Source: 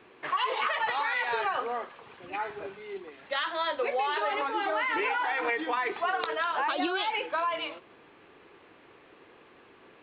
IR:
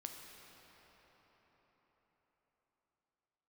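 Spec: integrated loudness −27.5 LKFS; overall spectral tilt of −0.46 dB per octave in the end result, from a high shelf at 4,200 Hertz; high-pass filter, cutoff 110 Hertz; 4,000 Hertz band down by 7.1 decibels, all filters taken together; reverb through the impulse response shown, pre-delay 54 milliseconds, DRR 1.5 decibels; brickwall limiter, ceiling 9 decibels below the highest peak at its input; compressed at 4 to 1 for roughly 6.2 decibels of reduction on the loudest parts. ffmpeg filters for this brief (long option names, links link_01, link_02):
-filter_complex "[0:a]highpass=110,equalizer=frequency=4000:width_type=o:gain=-9,highshelf=frequency=4200:gain=-3.5,acompressor=threshold=-33dB:ratio=4,alimiter=level_in=6.5dB:limit=-24dB:level=0:latency=1,volume=-6.5dB,asplit=2[link_01][link_02];[1:a]atrim=start_sample=2205,adelay=54[link_03];[link_02][link_03]afir=irnorm=-1:irlink=0,volume=1.5dB[link_04];[link_01][link_04]amix=inputs=2:normalize=0,volume=9.5dB"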